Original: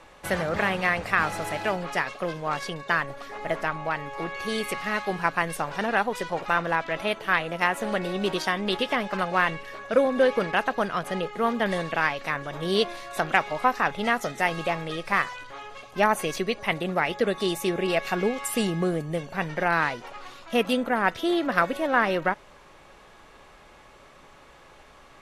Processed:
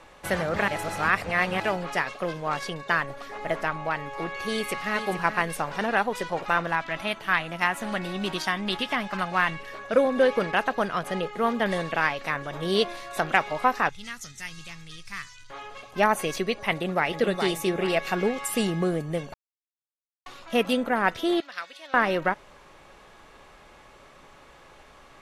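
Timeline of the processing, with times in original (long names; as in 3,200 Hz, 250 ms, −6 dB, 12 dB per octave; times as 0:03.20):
0:00.68–0:01.60: reverse
0:04.52–0:04.98: delay throw 430 ms, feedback 30%, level −9.5 dB
0:06.67–0:09.60: parametric band 470 Hz −10 dB 0.69 octaves
0:13.89–0:15.50: drawn EQ curve 100 Hz 0 dB, 170 Hz −11 dB, 650 Hz −30 dB, 1,200 Hz −16 dB, 3,200 Hz −7 dB, 6,400 Hz +3 dB, 13,000 Hz −6 dB
0:16.71–0:17.15: delay throw 420 ms, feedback 40%, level −6 dB
0:19.34–0:20.26: silence
0:21.40–0:21.94: resonant band-pass 4,400 Hz, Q 1.5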